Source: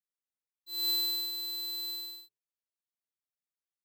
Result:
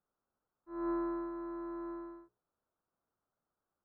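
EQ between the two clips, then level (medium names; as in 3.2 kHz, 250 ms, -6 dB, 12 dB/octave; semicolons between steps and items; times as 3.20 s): elliptic low-pass 1.4 kHz, stop band 60 dB; distance through air 200 m; +17.5 dB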